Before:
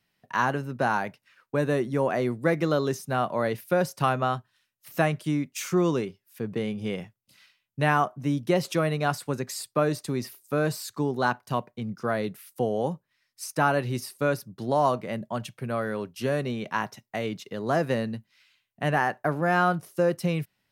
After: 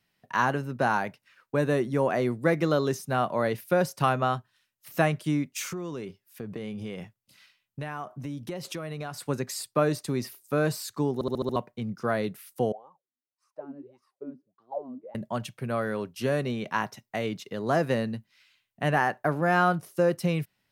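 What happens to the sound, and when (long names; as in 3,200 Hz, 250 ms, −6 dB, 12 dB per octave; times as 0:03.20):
0:05.69–0:09.21: downward compressor 5 to 1, threshold −32 dBFS
0:11.14: stutter in place 0.07 s, 6 plays
0:12.72–0:15.15: LFO wah 1.7 Hz 240–1,200 Hz, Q 15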